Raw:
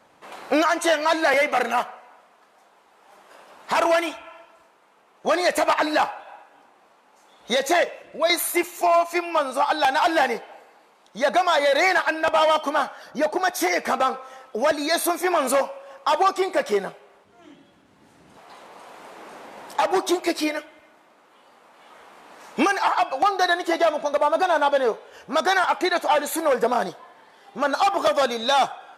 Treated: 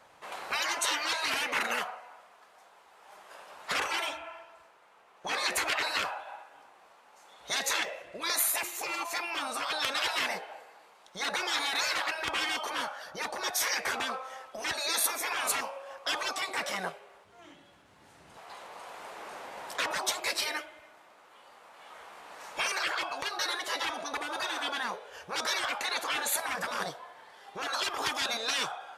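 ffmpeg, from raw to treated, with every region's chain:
-filter_complex "[0:a]asettb=1/sr,asplit=3[s0][s1][s2];[s0]atrim=end=3.734[s3];[s1]atrim=start=3.73:end=5.56,asetpts=PTS-STARTPTS,afade=t=in:d=0.004:c=qsin,afade=t=out:st=1.826:d=0.004:c=qsin,highshelf=f=4700:g=-4.5,bandreject=f=51.79:t=h:w=4,bandreject=f=103.58:t=h:w=4,bandreject=f=155.37:t=h:w=4,bandreject=f=207.16:t=h:w=4,bandreject=f=258.95:t=h:w=4,bandreject=f=310.74:t=h:w=4,bandreject=f=362.53:t=h:w=4,bandreject=f=414.32:t=h:w=4,bandreject=f=466.11:t=h:w=4,bandreject=f=517.9:t=h:w=4,bandreject=f=569.69:t=h:w=4,bandreject=f=621.48:t=h:w=4,bandreject=f=673.27:t=h:w=4,bandreject=f=725.06:t=h:w=4,bandreject=f=776.85:t=h:w=4,bandreject=f=828.64:t=h:w=4,bandreject=f=880.43:t=h:w=4,bandreject=f=932.22:t=h:w=4,bandreject=f=984.01:t=h:w=4,bandreject=f=1035.8:t=h:w=4,bandreject=f=1087.59:t=h:w=4,bandreject=f=1139.38:t=h:w=4,bandreject=f=1191.17:t=h:w=4,bandreject=f=1242.96:t=h:w=4[s4];[s2]atrim=start=5.556[s5];[s3][s4]acrossfade=d=0.004:c1=hsin:c2=qsin[s6];[s6][s5]acrossfade=d=0.004:c1=qsin:c2=hsin,afftfilt=real='re*lt(hypot(re,im),0.2)':imag='im*lt(hypot(re,im),0.2)':win_size=1024:overlap=0.75,equalizer=f=250:w=0.92:g=-9.5"

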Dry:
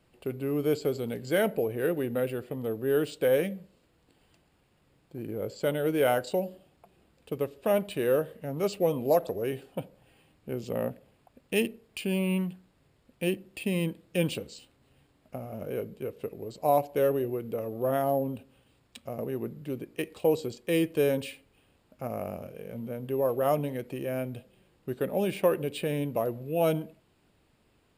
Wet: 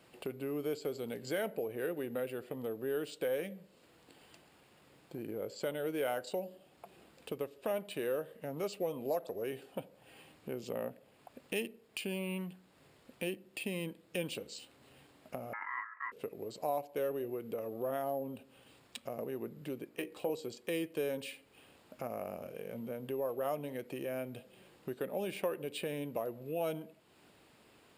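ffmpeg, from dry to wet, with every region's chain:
-filter_complex "[0:a]asettb=1/sr,asplit=3[s0][s1][s2];[s0]atrim=end=15.534[s3];[s1]atrim=start=15.53:end=16.12,asetpts=PTS-STARTPTS,afade=t=in:d=0.004:c=qsin,afade=t=out:st=0.586:d=0.004:c=qsin,lowpass=f=1000:w=0.5412,lowpass=f=1000:w=1.3066,aeval=exprs='val(0)*sin(2*PI*1500*n/s)':c=same,equalizer=f=300:w=2:g=12[s4];[s2]atrim=start=16.116[s5];[s3][s4]acrossfade=d=0.004:c1=hsin:c2=qsin[s6];[s6][s5]acrossfade=d=0.004:c1=qsin:c2=hsin,asettb=1/sr,asplit=3[s7][s8][s9];[s7]atrim=end=19.894[s10];[s8]atrim=start=19.89:end=20.3,asetpts=PTS-STARTPTS,afade=t=in:d=0.004:c=qsin,afade=t=out:st=0.406:d=0.004:c=qsin,equalizer=f=5800:w=0.52:g=-4.5,bandreject=f=60:t=h:w=6,bandreject=f=120:t=h:w=6,bandreject=f=180:t=h:w=6,bandreject=f=240:t=h:w=6,bandreject=f=300:t=h:w=6,bandreject=f=360:t=h:w=6,bandreject=f=420:t=h:w=6,bandreject=f=480:t=h:w=6,bandreject=f=540:t=h:w=6,asplit=2[s11][s12];[s12]adelay=16,volume=0.398[s13];[s11][s13]amix=inputs=2:normalize=0,atrim=end_sample=18081[s14];[s9]atrim=start=20.296[s15];[s10][s14]acrossfade=d=0.004:c1=hsin:c2=qsin[s16];[s16][s15]acrossfade=d=0.004:c1=qsin:c2=hsin,highpass=f=300:p=1,acompressor=threshold=0.00224:ratio=2,volume=2.24"

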